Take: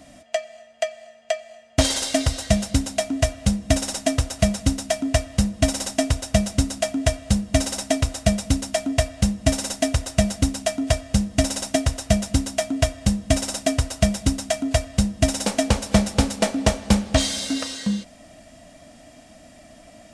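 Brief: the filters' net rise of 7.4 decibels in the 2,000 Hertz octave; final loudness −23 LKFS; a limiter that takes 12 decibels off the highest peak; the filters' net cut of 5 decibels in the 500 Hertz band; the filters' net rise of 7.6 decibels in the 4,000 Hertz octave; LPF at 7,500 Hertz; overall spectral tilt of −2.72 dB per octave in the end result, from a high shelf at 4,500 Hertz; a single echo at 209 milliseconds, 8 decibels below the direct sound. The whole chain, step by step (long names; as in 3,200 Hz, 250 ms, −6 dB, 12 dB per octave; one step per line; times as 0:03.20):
low-pass filter 7,500 Hz
parametric band 500 Hz −8.5 dB
parametric band 2,000 Hz +6.5 dB
parametric band 4,000 Hz +4 dB
high-shelf EQ 4,500 Hz +8 dB
brickwall limiter −13 dBFS
single-tap delay 209 ms −8 dB
level +1.5 dB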